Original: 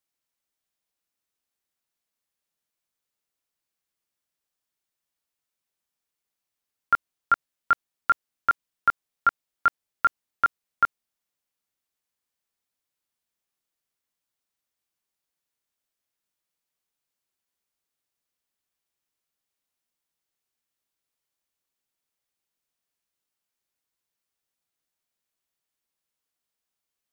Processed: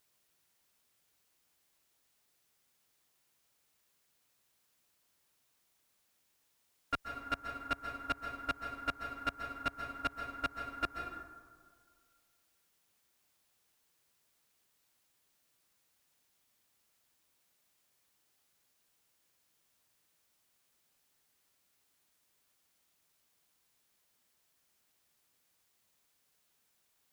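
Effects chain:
variable-slope delta modulation 16 kbit/s
high-shelf EQ 2,100 Hz −10 dB
asymmetric clip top −34 dBFS, bottom −19 dBFS
on a send at −4.5 dB: convolution reverb RT60 2.1 s, pre-delay 118 ms
on the sum: background noise white −69 dBFS
brickwall limiter −25 dBFS, peak gain reduction 5.5 dB
high-pass filter 74 Hz 6 dB per octave
low-shelf EQ 100 Hz +7 dB
expander for the loud parts 1.5 to 1, over −51 dBFS
level +2.5 dB

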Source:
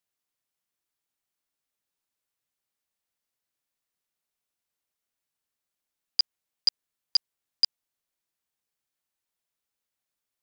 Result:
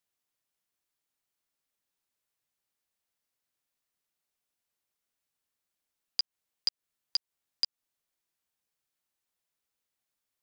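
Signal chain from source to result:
downward compressor, threshold −27 dBFS, peak gain reduction 9.5 dB

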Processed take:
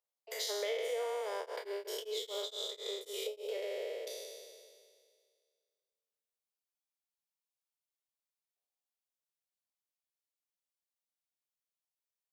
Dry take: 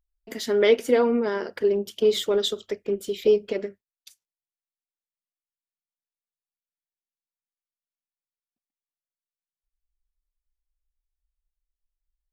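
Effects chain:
peak hold with a decay on every bin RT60 2.04 s
Butterworth high-pass 460 Hz 48 dB per octave
parametric band 1,600 Hz −8 dB 0.82 octaves
downward compressor 6 to 1, threshold −31 dBFS, peak gain reduction 15.5 dB
0:01.39–0:03.61: tremolo along a rectified sine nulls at 5.8 Hz → 2.8 Hz
level −3.5 dB

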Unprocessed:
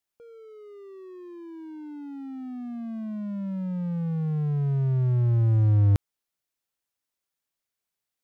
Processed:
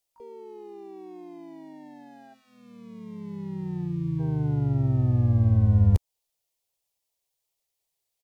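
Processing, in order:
phaser with its sweep stopped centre 620 Hz, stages 4
in parallel at −2 dB: downward compressor, threshold −31 dBFS, peak gain reduction 11 dB
on the sum: gain on a spectral selection 0:02.34–0:04.20, 420–870 Hz −25 dB
pitch-shifted copies added −12 semitones −17 dB, −3 semitones −4 dB, +12 semitones −10 dB
level −1 dB

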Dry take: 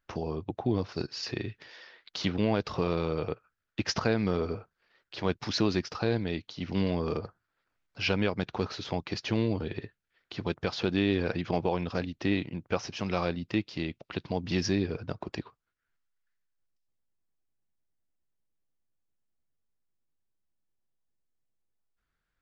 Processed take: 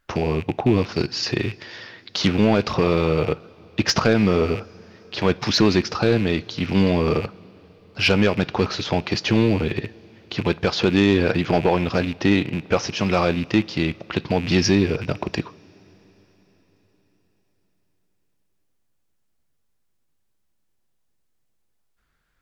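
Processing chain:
loose part that buzzes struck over −40 dBFS, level −34 dBFS
coupled-rooms reverb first 0.31 s, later 4.8 s, from −18 dB, DRR 17.5 dB
sine wavefolder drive 5 dB, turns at −10 dBFS
level +2.5 dB

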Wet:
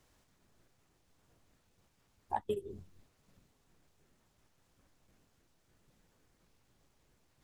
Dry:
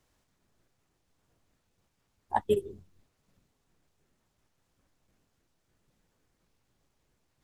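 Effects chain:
downward compressor 16 to 1, threshold −34 dBFS, peak gain reduction 14.5 dB
level +3 dB

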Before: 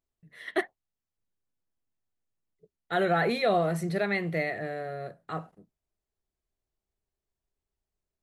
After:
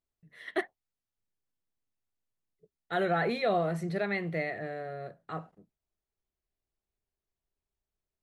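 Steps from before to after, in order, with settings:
high-shelf EQ 8,400 Hz −5 dB, from 0:03.07 −12 dB
level −3 dB

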